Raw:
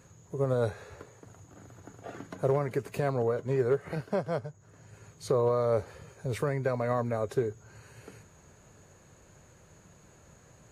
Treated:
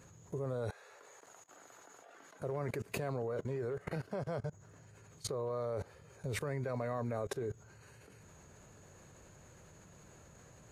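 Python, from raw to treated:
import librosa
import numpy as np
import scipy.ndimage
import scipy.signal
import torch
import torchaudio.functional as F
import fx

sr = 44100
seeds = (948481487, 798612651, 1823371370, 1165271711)

y = fx.highpass(x, sr, hz=620.0, slope=12, at=(0.7, 2.4))
y = fx.level_steps(y, sr, step_db=21)
y = F.gain(torch.from_numpy(y), 5.0).numpy()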